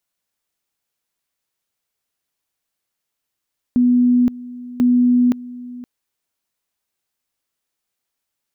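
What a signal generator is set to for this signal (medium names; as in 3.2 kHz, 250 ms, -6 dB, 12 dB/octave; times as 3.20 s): two-level tone 246 Hz -10.5 dBFS, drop 19 dB, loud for 0.52 s, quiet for 0.52 s, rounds 2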